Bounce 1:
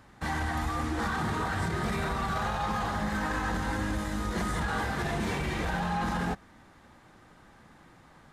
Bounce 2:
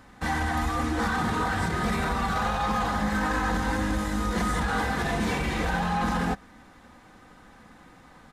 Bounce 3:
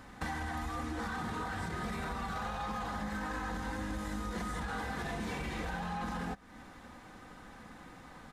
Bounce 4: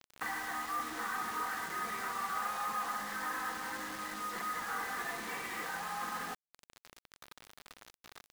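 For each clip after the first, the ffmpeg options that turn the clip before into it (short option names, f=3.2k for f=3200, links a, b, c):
-af "aecho=1:1:4:0.36,volume=3.5dB"
-af "acompressor=threshold=-36dB:ratio=5"
-af "highpass=370,equalizer=f=580:t=q:w=4:g=-5,equalizer=f=1.2k:t=q:w=4:g=8,equalizer=f=1.9k:t=q:w=4:g=7,equalizer=f=3.7k:t=q:w=4:g=-3,equalizer=f=5.7k:t=q:w=4:g=-9,lowpass=f=7.3k:w=0.5412,lowpass=f=7.3k:w=1.3066,acrusher=bits=6:mix=0:aa=0.000001,volume=-2dB"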